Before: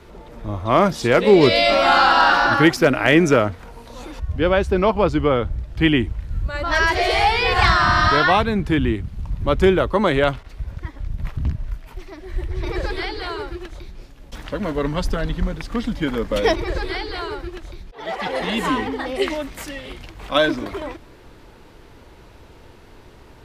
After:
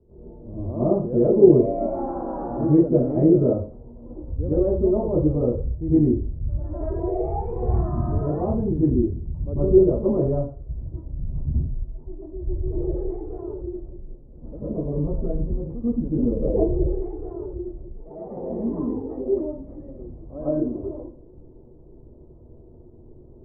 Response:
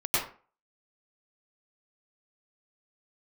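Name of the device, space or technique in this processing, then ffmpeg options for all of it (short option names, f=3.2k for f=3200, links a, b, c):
next room: -filter_complex "[0:a]lowpass=f=520:w=0.5412,lowpass=f=520:w=1.3066[a];[1:a]atrim=start_sample=2205[b];[a][b]afir=irnorm=-1:irlink=0,asettb=1/sr,asplit=3[c][d][e];[c]atrim=end=16.164[f];[d]atrim=start=16.16:end=16.95,asetpts=PTS-STARTPTS,afade=t=in:d=0.004:c=qsin,afade=t=out:st=0.786:d=0.004:c=qsin,tiltshelf=f=670:g=5[g];[e]atrim=start=16.946[h];[f][g]acrossfade=d=0.004:c1=hsin:c2=qsin[i];[i][h]acrossfade=d=0.004:c1=qsin:c2=hsin,volume=-11dB"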